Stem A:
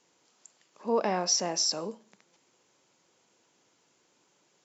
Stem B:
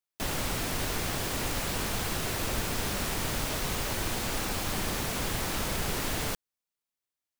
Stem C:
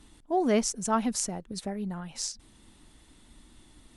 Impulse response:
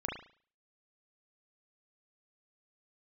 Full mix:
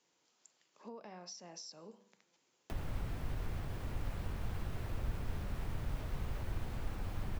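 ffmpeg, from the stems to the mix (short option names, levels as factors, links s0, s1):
-filter_complex "[0:a]equalizer=f=5400:w=0.41:g=8,bandreject=f=97.84:t=h:w=4,bandreject=f=195.68:t=h:w=4,bandreject=f=293.52:t=h:w=4,bandreject=f=391.36:t=h:w=4,bandreject=f=489.2:t=h:w=4,bandreject=f=587.04:t=h:w=4,bandreject=f=684.88:t=h:w=4,bandreject=f=782.72:t=h:w=4,bandreject=f=880.56:t=h:w=4,bandreject=f=978.4:t=h:w=4,bandreject=f=1076.24:t=h:w=4,bandreject=f=1174.08:t=h:w=4,bandreject=f=1271.92:t=h:w=4,bandreject=f=1369.76:t=h:w=4,bandreject=f=1467.6:t=h:w=4,bandreject=f=1565.44:t=h:w=4,bandreject=f=1663.28:t=h:w=4,bandreject=f=1761.12:t=h:w=4,bandreject=f=1858.96:t=h:w=4,bandreject=f=1956.8:t=h:w=4,bandreject=f=2054.64:t=h:w=4,bandreject=f=2152.48:t=h:w=4,bandreject=f=2250.32:t=h:w=4,bandreject=f=2348.16:t=h:w=4,bandreject=f=2446:t=h:w=4,bandreject=f=2543.84:t=h:w=4,bandreject=f=2641.68:t=h:w=4,bandreject=f=2739.52:t=h:w=4,bandreject=f=2837.36:t=h:w=4,bandreject=f=2935.2:t=h:w=4,bandreject=f=3033.04:t=h:w=4,volume=0.335[s0];[1:a]equalizer=f=6600:t=o:w=2.6:g=-6,adelay=2500,volume=0.841[s1];[s0][s1]amix=inputs=2:normalize=0,highshelf=f=4200:g=-9.5,acrossover=split=130[s2][s3];[s3]acompressor=threshold=0.00447:ratio=10[s4];[s2][s4]amix=inputs=2:normalize=0"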